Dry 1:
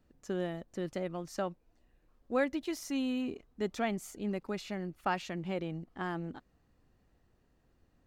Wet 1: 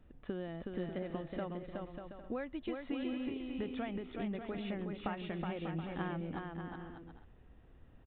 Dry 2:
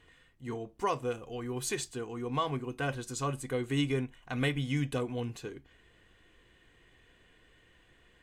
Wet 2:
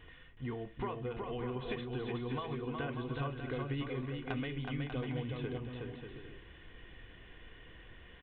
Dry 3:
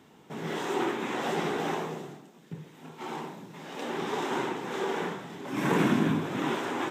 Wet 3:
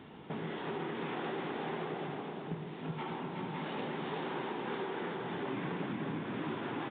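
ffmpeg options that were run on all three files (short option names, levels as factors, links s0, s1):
-af "aresample=8000,aresample=44100,acompressor=threshold=0.00794:ratio=10,lowshelf=f=89:g=7,aecho=1:1:370|592|725.2|805.1|853.1:0.631|0.398|0.251|0.158|0.1,volume=1.68"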